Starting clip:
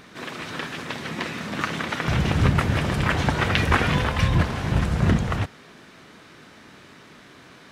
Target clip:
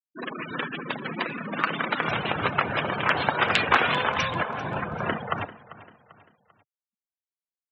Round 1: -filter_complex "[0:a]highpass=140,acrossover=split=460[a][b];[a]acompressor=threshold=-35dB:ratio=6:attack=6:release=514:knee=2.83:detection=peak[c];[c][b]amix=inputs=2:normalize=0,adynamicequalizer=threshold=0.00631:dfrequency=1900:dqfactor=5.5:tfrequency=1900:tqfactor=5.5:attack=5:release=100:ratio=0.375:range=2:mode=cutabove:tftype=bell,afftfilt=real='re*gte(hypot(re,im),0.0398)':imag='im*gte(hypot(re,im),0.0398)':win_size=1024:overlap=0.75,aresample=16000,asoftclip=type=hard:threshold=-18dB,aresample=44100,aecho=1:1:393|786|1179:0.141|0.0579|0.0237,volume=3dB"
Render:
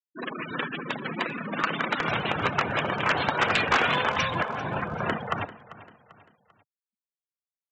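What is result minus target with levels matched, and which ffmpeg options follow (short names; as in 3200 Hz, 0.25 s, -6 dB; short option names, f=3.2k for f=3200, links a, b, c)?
hard clip: distortion +10 dB
-filter_complex "[0:a]highpass=140,acrossover=split=460[a][b];[a]acompressor=threshold=-35dB:ratio=6:attack=6:release=514:knee=2.83:detection=peak[c];[c][b]amix=inputs=2:normalize=0,adynamicequalizer=threshold=0.00631:dfrequency=1900:dqfactor=5.5:tfrequency=1900:tqfactor=5.5:attack=5:release=100:ratio=0.375:range=2:mode=cutabove:tftype=bell,afftfilt=real='re*gte(hypot(re,im),0.0398)':imag='im*gte(hypot(re,im),0.0398)':win_size=1024:overlap=0.75,aresample=16000,asoftclip=type=hard:threshold=-9.5dB,aresample=44100,aecho=1:1:393|786|1179:0.141|0.0579|0.0237,volume=3dB"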